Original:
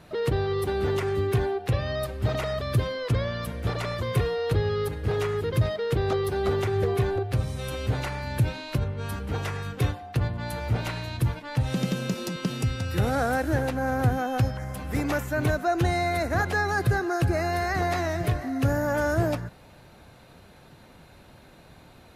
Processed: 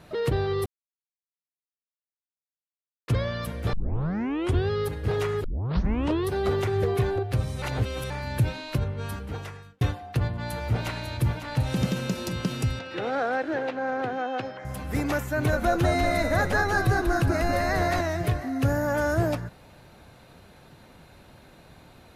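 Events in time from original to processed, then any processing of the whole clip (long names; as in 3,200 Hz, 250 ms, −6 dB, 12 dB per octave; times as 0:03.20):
0:00.66–0:03.08: silence
0:03.73: tape start 0.97 s
0:05.44: tape start 0.85 s
0:07.62–0:08.10: reverse
0:09.00–0:09.81: fade out
0:10.33–0:11.34: delay throw 550 ms, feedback 70%, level −9 dB
0:12.79–0:14.65: Chebyshev band-pass filter 350–3,400 Hz
0:15.33–0:18.01: echo with shifted repeats 193 ms, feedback 35%, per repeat −71 Hz, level −4 dB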